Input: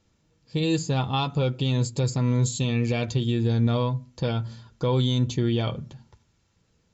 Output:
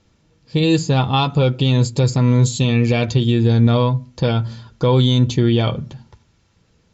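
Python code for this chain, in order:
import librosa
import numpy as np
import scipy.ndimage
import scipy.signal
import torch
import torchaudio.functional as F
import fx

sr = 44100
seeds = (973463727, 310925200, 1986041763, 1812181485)

y = scipy.signal.sosfilt(scipy.signal.butter(2, 6500.0, 'lowpass', fs=sr, output='sos'), x)
y = F.gain(torch.from_numpy(y), 8.5).numpy()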